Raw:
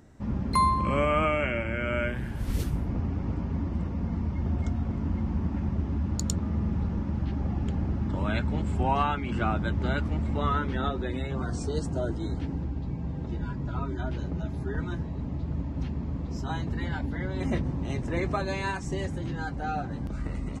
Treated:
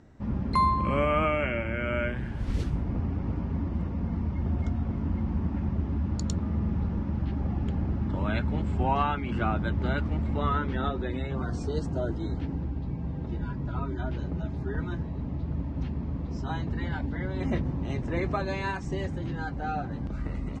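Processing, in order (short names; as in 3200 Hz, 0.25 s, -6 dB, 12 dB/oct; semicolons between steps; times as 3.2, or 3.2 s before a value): air absorption 93 m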